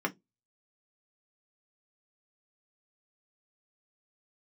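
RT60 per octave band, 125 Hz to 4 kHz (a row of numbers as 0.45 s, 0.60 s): 0.30 s, 0.25 s, 0.20 s, 0.15 s, 0.10 s, 0.15 s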